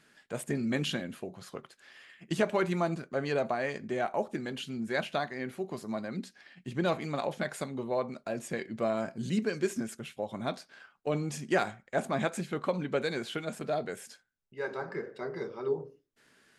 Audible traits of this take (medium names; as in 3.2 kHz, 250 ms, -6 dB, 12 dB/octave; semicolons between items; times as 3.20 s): noise floor -69 dBFS; spectral tilt -4.5 dB/octave